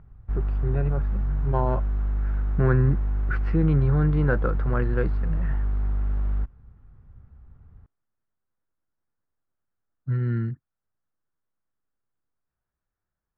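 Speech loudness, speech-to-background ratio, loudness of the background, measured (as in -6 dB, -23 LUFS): -26.5 LUFS, 1.5 dB, -28.0 LUFS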